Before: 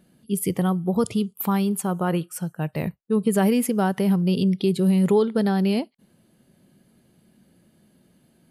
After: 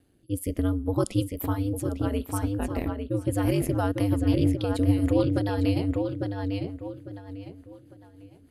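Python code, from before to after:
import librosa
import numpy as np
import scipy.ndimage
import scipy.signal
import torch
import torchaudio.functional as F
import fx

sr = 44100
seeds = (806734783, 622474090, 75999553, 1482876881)

y = x * np.sin(2.0 * np.pi * 97.0 * np.arange(len(x)) / sr)
y = fx.echo_filtered(y, sr, ms=851, feedback_pct=31, hz=4400.0, wet_db=-4)
y = fx.rotary_switch(y, sr, hz=0.7, then_hz=6.7, switch_at_s=3.2)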